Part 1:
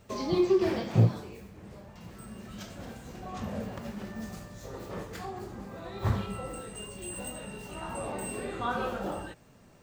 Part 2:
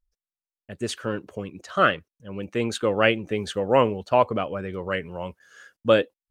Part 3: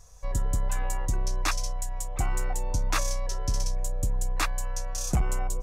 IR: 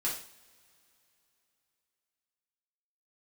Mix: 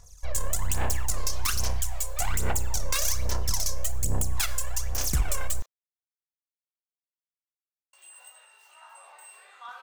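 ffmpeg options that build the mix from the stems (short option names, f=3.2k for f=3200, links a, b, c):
-filter_complex "[0:a]highpass=f=860:w=0.5412,highpass=f=860:w=1.3066,asoftclip=type=hard:threshold=-26.5dB,adelay=1000,volume=-8.5dB,asplit=3[a][b][c];[a]atrim=end=5.66,asetpts=PTS-STARTPTS,afade=t=out:st=5.656:d=0.004:c=hsin[d];[b]atrim=start=5.66:end=7.93,asetpts=PTS-STARTPTS,volume=0[e];[c]atrim=start=7.93,asetpts=PTS-STARTPTS,afade=t=in:d=0.004:c=hsin[f];[d][e][f]concat=n=3:v=0:a=1[g];[2:a]aeval=exprs='0.133*(cos(1*acos(clip(val(0)/0.133,-1,1)))-cos(1*PI/2))+0.0596*(cos(3*acos(clip(val(0)/0.133,-1,1)))-cos(3*PI/2))+0.0211*(cos(6*acos(clip(val(0)/0.133,-1,1)))-cos(6*PI/2))+0.00266*(cos(7*acos(clip(val(0)/0.133,-1,1)))-cos(7*PI/2))':c=same,aphaser=in_gain=1:out_gain=1:delay=1.9:decay=0.74:speed=1.2:type=sinusoidal,highshelf=f=2.5k:g=11.5,volume=-5dB,asplit=2[h][i];[i]volume=-17dB[j];[3:a]atrim=start_sample=2205[k];[j][k]afir=irnorm=-1:irlink=0[l];[g][h][l]amix=inputs=3:normalize=0,alimiter=limit=-14.5dB:level=0:latency=1:release=95"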